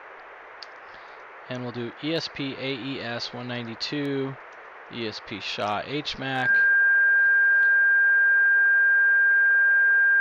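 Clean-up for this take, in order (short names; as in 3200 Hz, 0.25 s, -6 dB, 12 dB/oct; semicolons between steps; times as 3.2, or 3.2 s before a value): clip repair -15 dBFS; notch 1600 Hz, Q 30; noise print and reduce 25 dB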